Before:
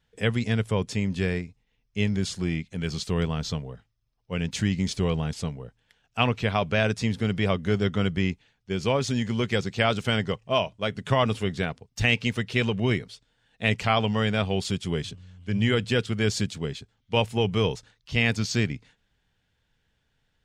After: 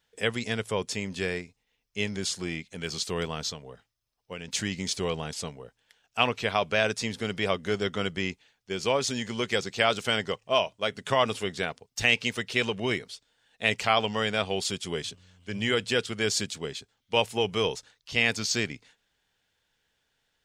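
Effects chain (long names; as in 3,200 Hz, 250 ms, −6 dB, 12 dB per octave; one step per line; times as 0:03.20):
bass and treble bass −12 dB, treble +5 dB
0:03.49–0:04.48: downward compressor 3 to 1, threshold −36 dBFS, peak gain reduction 7 dB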